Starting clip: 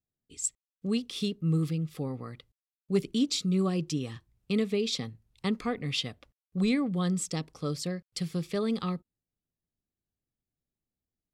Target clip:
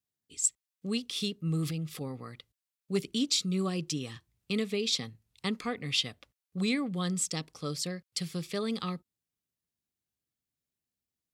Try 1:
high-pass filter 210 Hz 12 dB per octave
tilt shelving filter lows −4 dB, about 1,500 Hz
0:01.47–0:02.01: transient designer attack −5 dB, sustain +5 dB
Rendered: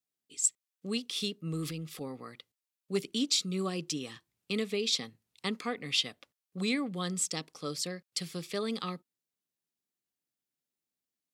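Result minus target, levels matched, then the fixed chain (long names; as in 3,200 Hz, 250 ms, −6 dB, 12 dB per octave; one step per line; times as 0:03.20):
125 Hz band −4.0 dB
high-pass filter 62 Hz 12 dB per octave
tilt shelving filter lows −4 dB, about 1,500 Hz
0:01.47–0:02.01: transient designer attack −5 dB, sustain +5 dB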